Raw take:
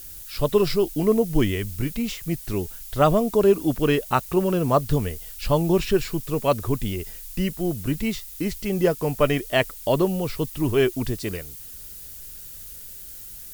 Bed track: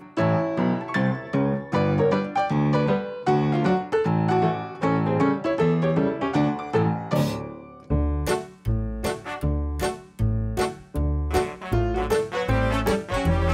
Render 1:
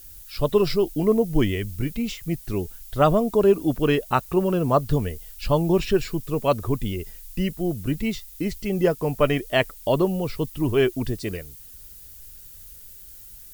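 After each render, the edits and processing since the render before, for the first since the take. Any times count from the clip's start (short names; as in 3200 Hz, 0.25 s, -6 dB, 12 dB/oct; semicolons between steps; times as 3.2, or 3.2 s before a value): denoiser 6 dB, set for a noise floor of -40 dBFS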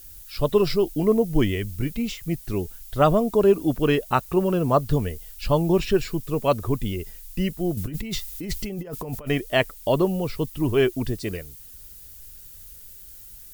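7.77–9.28 negative-ratio compressor -31 dBFS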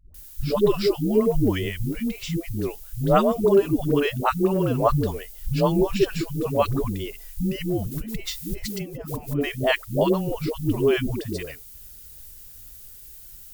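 dispersion highs, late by 0.144 s, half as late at 370 Hz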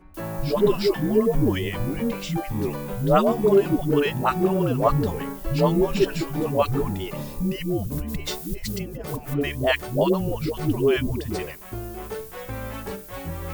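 add bed track -11 dB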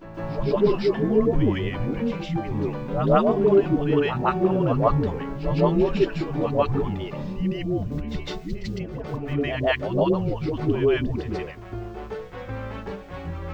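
air absorption 190 m; on a send: reverse echo 0.157 s -9 dB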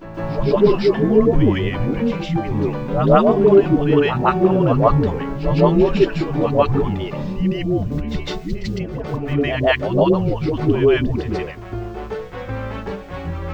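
gain +6 dB; limiter -1 dBFS, peak gain reduction 1 dB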